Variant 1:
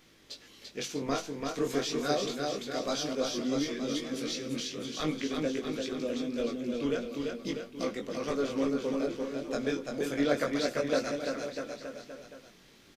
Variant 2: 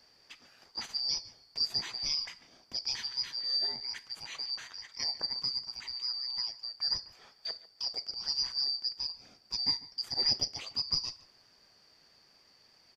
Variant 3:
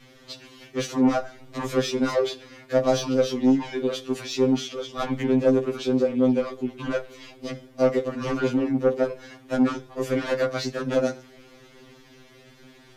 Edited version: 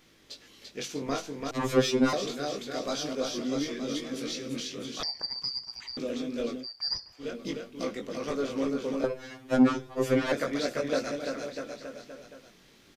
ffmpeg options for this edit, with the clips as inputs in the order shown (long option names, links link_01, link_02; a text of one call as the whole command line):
ffmpeg -i take0.wav -i take1.wav -i take2.wav -filter_complex "[2:a]asplit=2[link_01][link_02];[1:a]asplit=2[link_03][link_04];[0:a]asplit=5[link_05][link_06][link_07][link_08][link_09];[link_05]atrim=end=1.512[link_10];[link_01]atrim=start=1.508:end=2.132[link_11];[link_06]atrim=start=2.128:end=5.032[link_12];[link_03]atrim=start=5.028:end=5.972[link_13];[link_07]atrim=start=5.968:end=6.67[link_14];[link_04]atrim=start=6.57:end=7.28[link_15];[link_08]atrim=start=7.18:end=9.042[link_16];[link_02]atrim=start=9.038:end=10.322[link_17];[link_09]atrim=start=10.318[link_18];[link_10][link_11]acrossfade=duration=0.004:curve1=hsin:curve2=hsin[link_19];[link_19][link_12]acrossfade=duration=0.004:curve1=hsin:curve2=hsin[link_20];[link_20][link_13]acrossfade=duration=0.004:curve1=hsin:curve2=hsin[link_21];[link_21][link_14]acrossfade=duration=0.004:curve1=hsin:curve2=hsin[link_22];[link_22][link_15]acrossfade=duration=0.1:curve1=tri:curve2=tri[link_23];[link_23][link_16]acrossfade=duration=0.1:curve1=tri:curve2=tri[link_24];[link_24][link_17]acrossfade=duration=0.004:curve1=hsin:curve2=hsin[link_25];[link_25][link_18]acrossfade=duration=0.004:curve1=hsin:curve2=hsin" out.wav